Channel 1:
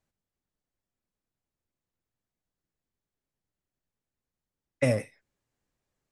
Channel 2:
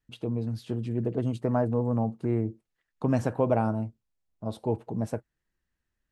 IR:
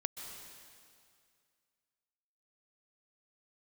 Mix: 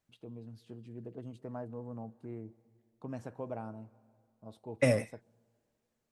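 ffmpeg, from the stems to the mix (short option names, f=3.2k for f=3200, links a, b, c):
-filter_complex "[0:a]volume=-1dB[a];[1:a]volume=-16.5dB,asplit=2[b][c];[c]volume=-16.5dB[d];[2:a]atrim=start_sample=2205[e];[d][e]afir=irnorm=-1:irlink=0[f];[a][b][f]amix=inputs=3:normalize=0,lowshelf=f=91:g=-6"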